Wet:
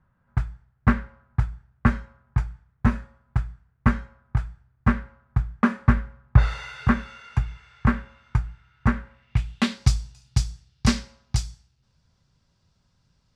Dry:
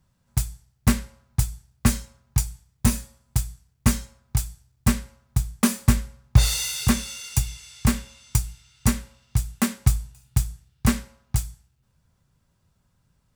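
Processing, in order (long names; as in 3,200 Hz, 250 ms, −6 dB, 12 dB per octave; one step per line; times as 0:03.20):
low-pass filter sweep 1,500 Hz → 5,100 Hz, 0:09.03–0:09.86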